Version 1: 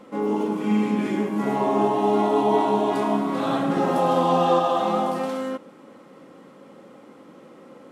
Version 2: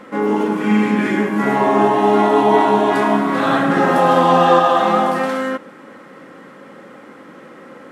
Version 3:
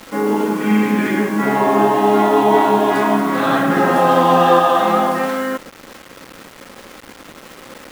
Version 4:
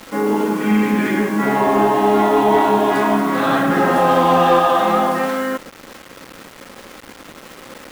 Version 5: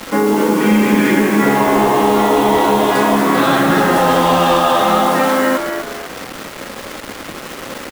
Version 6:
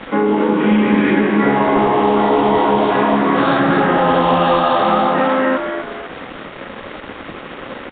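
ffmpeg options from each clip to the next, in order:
ffmpeg -i in.wav -af "equalizer=frequency=1700:width=1.8:gain=11,volume=6dB" out.wav
ffmpeg -i in.wav -af "acrusher=bits=5:mix=0:aa=0.000001" out.wav
ffmpeg -i in.wav -af "asoftclip=type=tanh:threshold=-4.5dB" out.wav
ffmpeg -i in.wav -filter_complex "[0:a]acrossover=split=130|3000[link_01][link_02][link_03];[link_02]acompressor=threshold=-20dB:ratio=6[link_04];[link_01][link_04][link_03]amix=inputs=3:normalize=0,asplit=2[link_05][link_06];[link_06]asplit=4[link_07][link_08][link_09][link_10];[link_07]adelay=249,afreqshift=78,volume=-7dB[link_11];[link_08]adelay=498,afreqshift=156,volume=-15.9dB[link_12];[link_09]adelay=747,afreqshift=234,volume=-24.7dB[link_13];[link_10]adelay=996,afreqshift=312,volume=-33.6dB[link_14];[link_11][link_12][link_13][link_14]amix=inputs=4:normalize=0[link_15];[link_05][link_15]amix=inputs=2:normalize=0,volume=8.5dB" out.wav
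ffmpeg -i in.wav -af "volume=-1dB" -ar 8000 -c:a nellymoser out.flv

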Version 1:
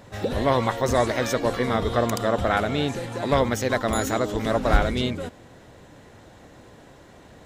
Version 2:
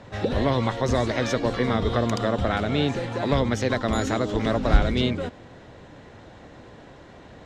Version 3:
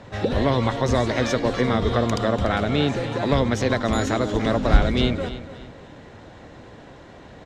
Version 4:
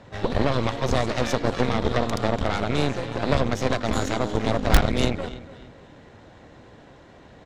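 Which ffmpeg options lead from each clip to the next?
ffmpeg -i in.wav -filter_complex "[0:a]lowpass=4900,acrossover=split=330|3000[link_01][link_02][link_03];[link_02]acompressor=threshold=-26dB:ratio=6[link_04];[link_01][link_04][link_03]amix=inputs=3:normalize=0,volume=2.5dB" out.wav
ffmpeg -i in.wav -af "aecho=1:1:290|580|870:0.2|0.0658|0.0217,volume=2dB" out.wav
ffmpeg -i in.wav -filter_complex "[0:a]asplit=2[link_01][link_02];[link_02]aeval=exprs='(mod(1.88*val(0)+1,2)-1)/1.88':channel_layout=same,volume=-11dB[link_03];[link_01][link_03]amix=inputs=2:normalize=0,aeval=exprs='0.794*(cos(1*acos(clip(val(0)/0.794,-1,1)))-cos(1*PI/2))+0.112*(cos(3*acos(clip(val(0)/0.794,-1,1)))-cos(3*PI/2))+0.126*(cos(6*acos(clip(val(0)/0.794,-1,1)))-cos(6*PI/2))':channel_layout=same,volume=-2dB" out.wav

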